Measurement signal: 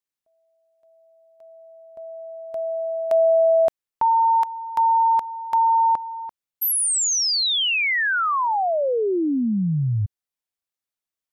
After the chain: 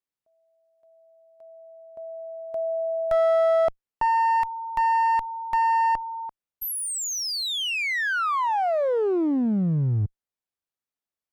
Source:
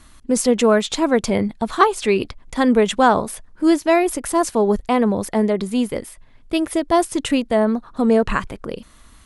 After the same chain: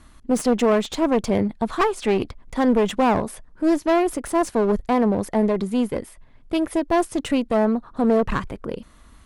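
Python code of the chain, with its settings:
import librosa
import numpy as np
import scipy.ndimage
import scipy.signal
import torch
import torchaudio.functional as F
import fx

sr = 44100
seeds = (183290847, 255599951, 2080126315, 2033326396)

y = fx.clip_asym(x, sr, top_db=-22.0, bottom_db=-8.0)
y = fx.high_shelf(y, sr, hz=2100.0, db=-7.5)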